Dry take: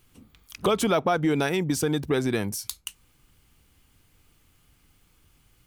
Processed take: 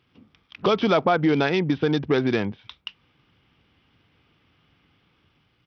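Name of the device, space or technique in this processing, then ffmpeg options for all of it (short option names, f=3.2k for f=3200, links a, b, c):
Bluetooth headset: -af "highpass=110,dynaudnorm=f=250:g=5:m=3.5dB,aresample=8000,aresample=44100" -ar 44100 -c:a sbc -b:a 64k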